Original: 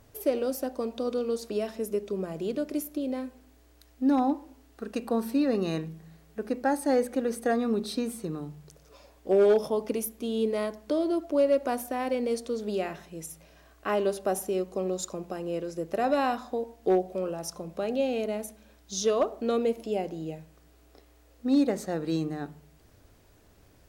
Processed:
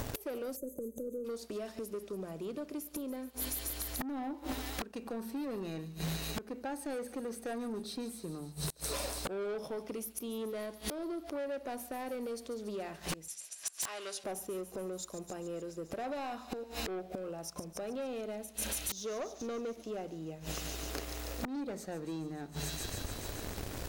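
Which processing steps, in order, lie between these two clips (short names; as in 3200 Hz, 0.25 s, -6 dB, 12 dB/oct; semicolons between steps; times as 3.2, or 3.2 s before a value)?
sample leveller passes 2; thin delay 0.143 s, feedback 72%, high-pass 4300 Hz, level -9 dB; 0.56–1.25 spectral gain 600–6100 Hz -30 dB; 13.28–14.24 weighting filter ITU-R 468; flipped gate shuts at -26 dBFS, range -36 dB; sine folder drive 17 dB, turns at -24.5 dBFS; compressor 3:1, threshold -38 dBFS, peak gain reduction 8.5 dB; gain +1.5 dB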